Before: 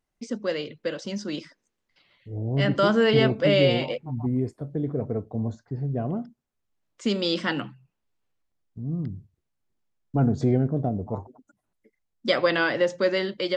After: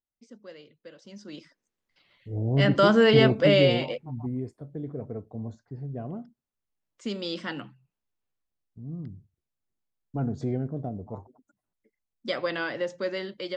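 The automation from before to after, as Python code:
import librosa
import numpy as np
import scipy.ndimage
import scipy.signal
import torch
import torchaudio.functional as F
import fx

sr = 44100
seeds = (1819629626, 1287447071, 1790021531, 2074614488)

y = fx.gain(x, sr, db=fx.line((0.93, -18.0), (1.31, -10.5), (2.36, 1.5), (3.42, 1.5), (4.48, -7.5)))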